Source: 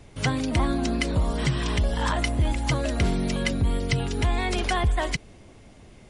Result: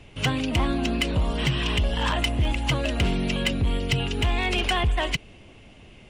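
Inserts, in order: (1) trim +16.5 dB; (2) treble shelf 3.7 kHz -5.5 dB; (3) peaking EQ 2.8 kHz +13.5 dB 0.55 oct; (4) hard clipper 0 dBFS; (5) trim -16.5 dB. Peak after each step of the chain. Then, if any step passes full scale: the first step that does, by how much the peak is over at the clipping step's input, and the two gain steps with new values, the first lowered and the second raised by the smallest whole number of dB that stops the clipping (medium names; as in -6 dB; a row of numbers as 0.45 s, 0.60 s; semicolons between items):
+4.5 dBFS, +3.0 dBFS, +9.0 dBFS, 0.0 dBFS, -16.5 dBFS; step 1, 9.0 dB; step 1 +7.5 dB, step 5 -7.5 dB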